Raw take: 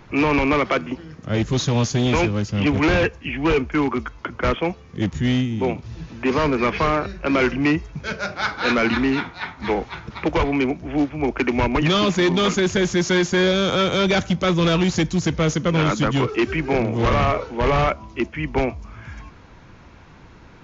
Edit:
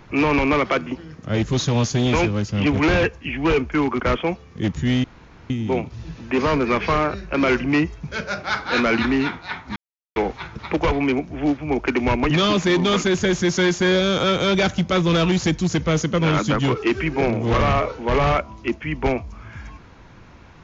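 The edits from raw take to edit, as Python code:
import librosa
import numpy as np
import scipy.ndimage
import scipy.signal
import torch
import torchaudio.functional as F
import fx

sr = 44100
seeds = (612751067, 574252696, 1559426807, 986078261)

y = fx.edit(x, sr, fx.cut(start_s=4.0, length_s=0.38),
    fx.insert_room_tone(at_s=5.42, length_s=0.46),
    fx.insert_silence(at_s=9.68, length_s=0.4), tone=tone)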